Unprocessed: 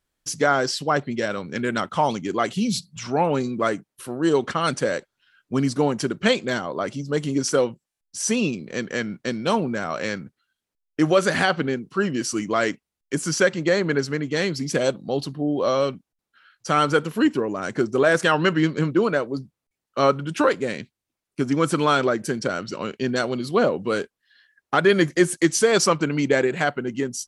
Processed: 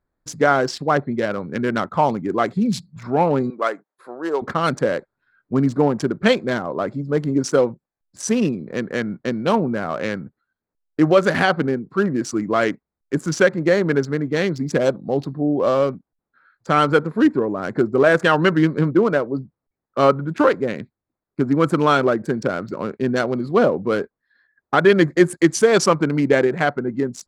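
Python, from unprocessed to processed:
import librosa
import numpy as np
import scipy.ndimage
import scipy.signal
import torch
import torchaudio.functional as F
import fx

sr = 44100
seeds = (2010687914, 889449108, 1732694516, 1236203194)

y = fx.highpass(x, sr, hz=570.0, slope=12, at=(3.5, 4.42))
y = fx.wiener(y, sr, points=15)
y = fx.high_shelf(y, sr, hz=3700.0, db=-6.0)
y = F.gain(torch.from_numpy(y), 4.0).numpy()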